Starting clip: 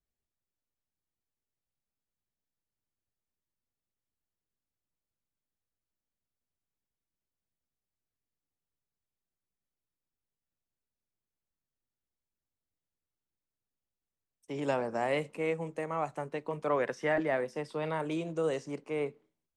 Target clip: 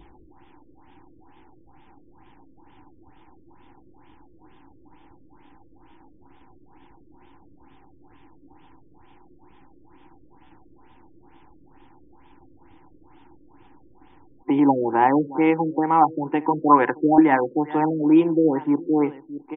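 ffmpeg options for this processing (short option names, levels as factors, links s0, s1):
-filter_complex "[0:a]adynamicequalizer=threshold=0.00316:dfrequency=1500:dqfactor=2.1:tfrequency=1500:tqfactor=2.1:attack=5:release=100:ratio=0.375:range=2.5:mode=boostabove:tftype=bell,asplit=2[s0][s1];[s1]aecho=0:1:621:0.0891[s2];[s0][s2]amix=inputs=2:normalize=0,acompressor=mode=upward:threshold=0.02:ratio=2.5,superequalizer=6b=3.98:8b=0.501:9b=3.98,afftfilt=real='re*lt(b*sr/1024,560*pow(3700/560,0.5+0.5*sin(2*PI*2.2*pts/sr)))':imag='im*lt(b*sr/1024,560*pow(3700/560,0.5+0.5*sin(2*PI*2.2*pts/sr)))':win_size=1024:overlap=0.75,volume=2.66"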